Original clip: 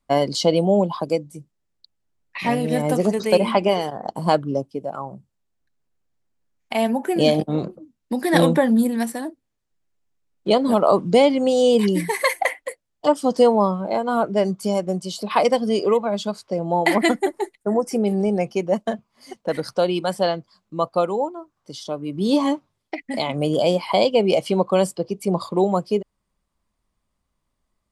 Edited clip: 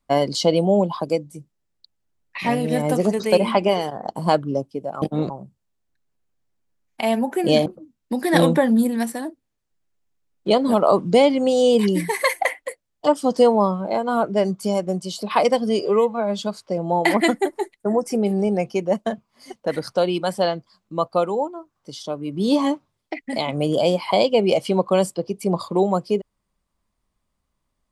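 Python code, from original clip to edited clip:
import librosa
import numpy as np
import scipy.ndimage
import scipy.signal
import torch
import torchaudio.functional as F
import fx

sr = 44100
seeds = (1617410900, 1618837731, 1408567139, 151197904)

y = fx.edit(x, sr, fx.move(start_s=7.38, length_s=0.28, to_s=5.02),
    fx.stretch_span(start_s=15.81, length_s=0.38, factor=1.5), tone=tone)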